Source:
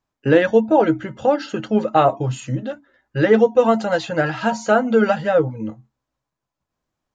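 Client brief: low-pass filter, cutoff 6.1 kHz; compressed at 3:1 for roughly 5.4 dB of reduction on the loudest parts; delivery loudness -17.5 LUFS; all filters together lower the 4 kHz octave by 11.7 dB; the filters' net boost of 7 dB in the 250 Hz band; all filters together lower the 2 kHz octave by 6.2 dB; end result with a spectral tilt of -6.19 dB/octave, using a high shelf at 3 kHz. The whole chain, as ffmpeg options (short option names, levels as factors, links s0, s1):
-af "lowpass=6100,equalizer=f=250:t=o:g=9,equalizer=f=2000:t=o:g=-5,highshelf=f=3000:g=-8,equalizer=f=4000:t=o:g=-7.5,acompressor=threshold=0.224:ratio=3,volume=1.19"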